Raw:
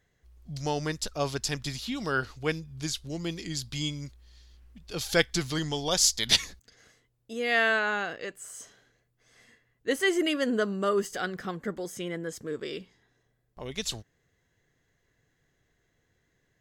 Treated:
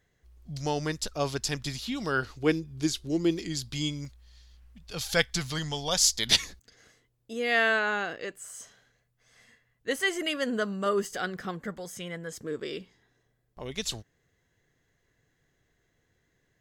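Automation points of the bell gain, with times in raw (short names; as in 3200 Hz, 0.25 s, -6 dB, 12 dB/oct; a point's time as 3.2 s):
bell 340 Hz 0.69 oct
+1 dB
from 2.37 s +11 dB
from 3.39 s +3.5 dB
from 4.05 s -8.5 dB
from 6.07 s +1.5 dB
from 8.39 s -8 dB
from 10.86 s -1.5 dB
from 11.66 s -10 dB
from 12.32 s +0.5 dB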